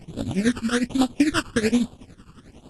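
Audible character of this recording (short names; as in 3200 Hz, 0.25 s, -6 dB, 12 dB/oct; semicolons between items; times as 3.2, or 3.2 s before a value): aliases and images of a low sample rate 2100 Hz, jitter 20%; phasing stages 12, 1.2 Hz, lowest notch 640–2000 Hz; tremolo triangle 11 Hz, depth 85%; AAC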